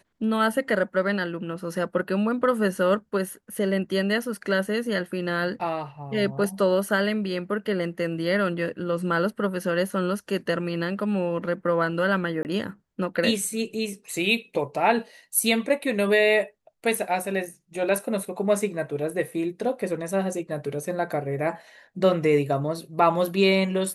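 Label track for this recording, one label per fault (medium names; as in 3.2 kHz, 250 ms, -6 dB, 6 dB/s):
12.430000	12.450000	dropout 19 ms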